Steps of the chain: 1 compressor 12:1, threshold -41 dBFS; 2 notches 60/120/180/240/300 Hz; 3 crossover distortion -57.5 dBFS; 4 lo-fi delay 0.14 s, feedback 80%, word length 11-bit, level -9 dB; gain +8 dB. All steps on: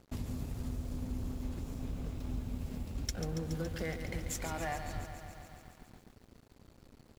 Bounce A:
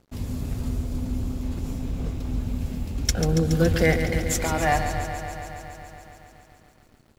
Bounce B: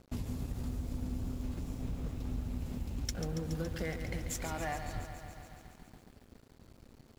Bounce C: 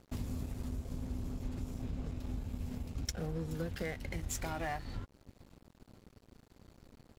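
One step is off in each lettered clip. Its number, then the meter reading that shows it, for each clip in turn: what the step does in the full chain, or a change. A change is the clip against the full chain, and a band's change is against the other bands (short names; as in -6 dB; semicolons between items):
1, mean gain reduction 7.5 dB; 2, crest factor change -1.5 dB; 4, momentary loudness spread change -3 LU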